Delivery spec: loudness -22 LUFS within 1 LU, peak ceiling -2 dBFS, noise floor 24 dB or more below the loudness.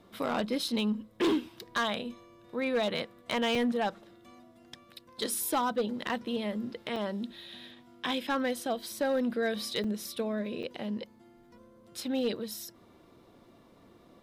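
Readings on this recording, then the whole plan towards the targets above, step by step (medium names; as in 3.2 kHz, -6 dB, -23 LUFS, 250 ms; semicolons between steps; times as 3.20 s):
clipped samples 1.0%; clipping level -23.0 dBFS; dropouts 5; longest dropout 3.9 ms; loudness -32.5 LUFS; peak level -23.0 dBFS; loudness target -22.0 LUFS
-> clip repair -23 dBFS; interpolate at 0.68/3.55/6.96/9.84/10.63 s, 3.9 ms; trim +10.5 dB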